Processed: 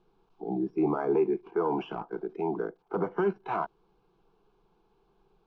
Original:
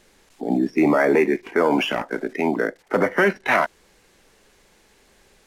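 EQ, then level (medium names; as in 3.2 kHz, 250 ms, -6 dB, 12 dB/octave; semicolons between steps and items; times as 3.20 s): distance through air 280 m; treble shelf 2.5 kHz -10 dB; static phaser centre 380 Hz, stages 8; -5.0 dB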